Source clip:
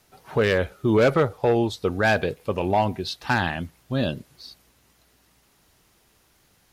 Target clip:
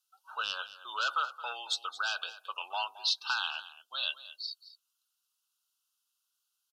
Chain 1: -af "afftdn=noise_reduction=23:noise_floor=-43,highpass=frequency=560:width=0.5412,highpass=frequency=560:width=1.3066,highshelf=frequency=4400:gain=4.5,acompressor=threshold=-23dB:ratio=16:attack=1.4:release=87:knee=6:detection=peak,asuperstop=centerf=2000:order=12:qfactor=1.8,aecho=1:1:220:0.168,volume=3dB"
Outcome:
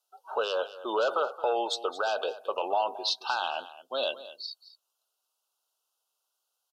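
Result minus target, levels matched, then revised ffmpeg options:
500 Hz band +18.5 dB
-af "afftdn=noise_reduction=23:noise_floor=-43,highpass=frequency=1300:width=0.5412,highpass=frequency=1300:width=1.3066,highshelf=frequency=4400:gain=4.5,acompressor=threshold=-23dB:ratio=16:attack=1.4:release=87:knee=6:detection=peak,asuperstop=centerf=2000:order=12:qfactor=1.8,aecho=1:1:220:0.168,volume=3dB"

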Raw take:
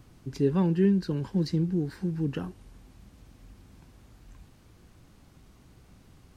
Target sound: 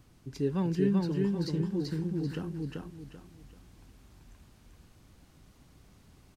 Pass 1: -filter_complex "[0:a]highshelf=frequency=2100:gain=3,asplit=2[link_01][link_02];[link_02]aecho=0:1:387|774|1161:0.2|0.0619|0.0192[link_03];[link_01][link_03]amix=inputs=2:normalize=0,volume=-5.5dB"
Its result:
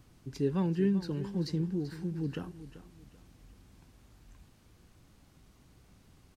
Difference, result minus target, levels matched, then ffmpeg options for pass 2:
echo-to-direct −12 dB
-filter_complex "[0:a]highshelf=frequency=2100:gain=3,asplit=2[link_01][link_02];[link_02]aecho=0:1:387|774|1161|1548:0.794|0.246|0.0763|0.0237[link_03];[link_01][link_03]amix=inputs=2:normalize=0,volume=-5.5dB"

